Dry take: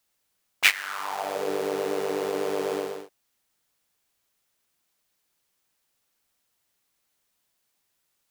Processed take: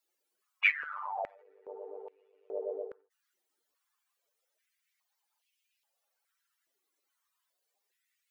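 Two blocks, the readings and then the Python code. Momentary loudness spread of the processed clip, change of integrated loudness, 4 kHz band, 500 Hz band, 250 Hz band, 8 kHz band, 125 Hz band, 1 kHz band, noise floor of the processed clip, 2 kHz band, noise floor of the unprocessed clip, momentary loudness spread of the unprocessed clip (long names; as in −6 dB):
20 LU, −6.5 dB, below −15 dB, −13.0 dB, −22.0 dB, below −35 dB, below −25 dB, −8.5 dB, −83 dBFS, −5.5 dB, −75 dBFS, 10 LU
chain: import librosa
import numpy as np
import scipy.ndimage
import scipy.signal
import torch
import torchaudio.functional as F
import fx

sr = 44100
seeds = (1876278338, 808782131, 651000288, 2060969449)

y = fx.spec_expand(x, sr, power=2.7)
y = fx.filter_held_highpass(y, sr, hz=2.4, low_hz=370.0, high_hz=2600.0)
y = F.gain(torch.from_numpy(y), -8.0).numpy()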